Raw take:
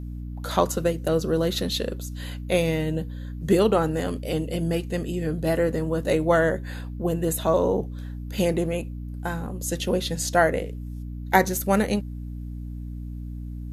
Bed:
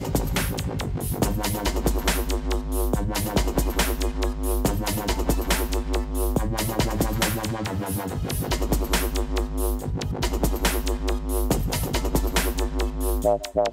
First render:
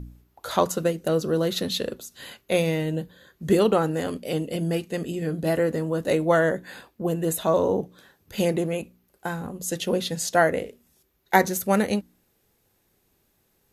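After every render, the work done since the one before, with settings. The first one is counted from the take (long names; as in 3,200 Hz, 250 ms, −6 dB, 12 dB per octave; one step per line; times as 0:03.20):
hum removal 60 Hz, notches 5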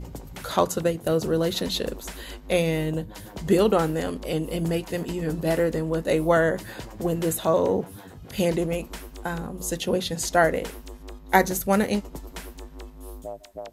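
mix in bed −15.5 dB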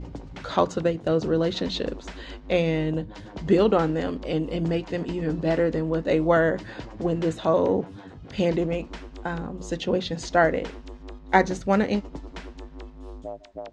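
Bessel low-pass filter 4,100 Hz, order 6
parametric band 290 Hz +5.5 dB 0.21 octaves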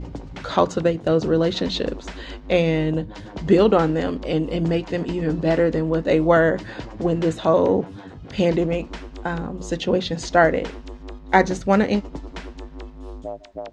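level +4 dB
brickwall limiter −2 dBFS, peak gain reduction 1.5 dB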